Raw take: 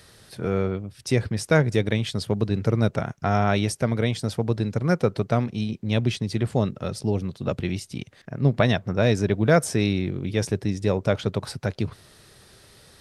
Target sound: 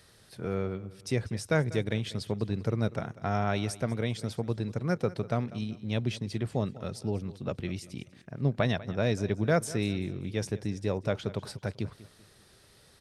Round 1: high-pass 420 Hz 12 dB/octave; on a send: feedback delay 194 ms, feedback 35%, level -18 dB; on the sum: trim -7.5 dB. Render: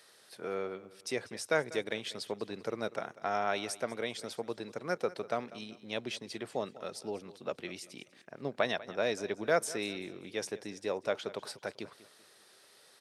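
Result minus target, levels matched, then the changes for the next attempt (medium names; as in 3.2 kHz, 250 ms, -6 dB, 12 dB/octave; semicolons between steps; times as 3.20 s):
500 Hz band +2.5 dB
remove: high-pass 420 Hz 12 dB/octave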